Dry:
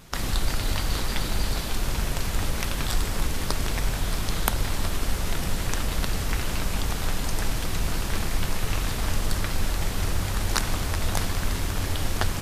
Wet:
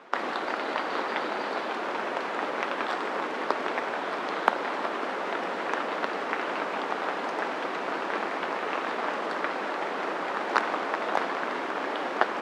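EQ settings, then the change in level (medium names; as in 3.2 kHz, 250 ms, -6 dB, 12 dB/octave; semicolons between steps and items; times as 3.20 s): Bessel high-pass 460 Hz, order 6; low-pass 1.5 kHz 12 dB/octave; +8.5 dB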